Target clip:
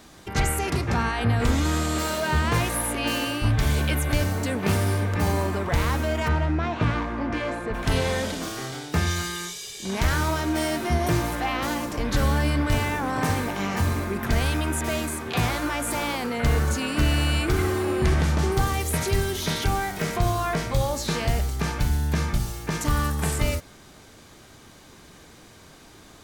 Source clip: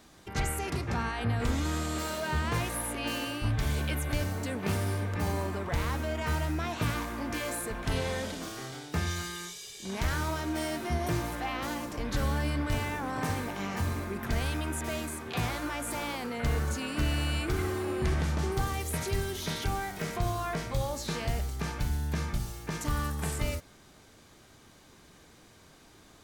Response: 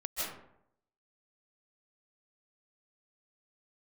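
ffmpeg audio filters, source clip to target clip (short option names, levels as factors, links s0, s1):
-filter_complex "[0:a]asplit=3[s0][s1][s2];[s0]afade=t=out:st=6.27:d=0.02[s3];[s1]adynamicsmooth=sensitivity=1:basefreq=2700,afade=t=in:st=6.27:d=0.02,afade=t=out:st=7.73:d=0.02[s4];[s2]afade=t=in:st=7.73:d=0.02[s5];[s3][s4][s5]amix=inputs=3:normalize=0,volume=2.37"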